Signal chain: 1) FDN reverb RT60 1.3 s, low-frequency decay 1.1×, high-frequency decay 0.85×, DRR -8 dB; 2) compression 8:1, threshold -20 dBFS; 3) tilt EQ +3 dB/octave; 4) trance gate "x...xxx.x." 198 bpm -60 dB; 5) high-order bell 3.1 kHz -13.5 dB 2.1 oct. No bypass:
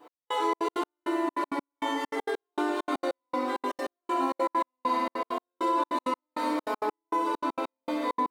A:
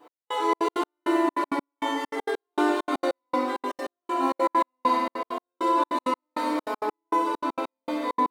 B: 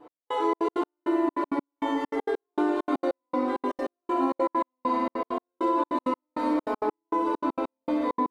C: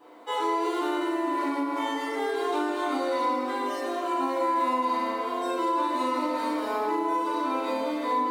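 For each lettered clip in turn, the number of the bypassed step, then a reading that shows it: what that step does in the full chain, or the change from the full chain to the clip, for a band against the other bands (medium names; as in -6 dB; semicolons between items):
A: 2, mean gain reduction 3.0 dB; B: 3, 4 kHz band -7.0 dB; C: 4, crest factor change -3.0 dB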